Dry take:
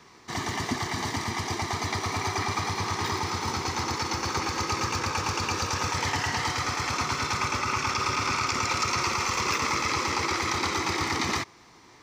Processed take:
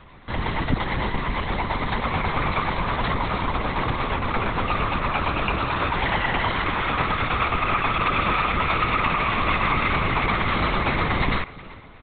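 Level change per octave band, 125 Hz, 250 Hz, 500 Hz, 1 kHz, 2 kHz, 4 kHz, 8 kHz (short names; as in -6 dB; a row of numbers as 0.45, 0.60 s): +6.0 dB, +5.5 dB, +6.0 dB, +5.0 dB, +5.0 dB, -0.5 dB, under -40 dB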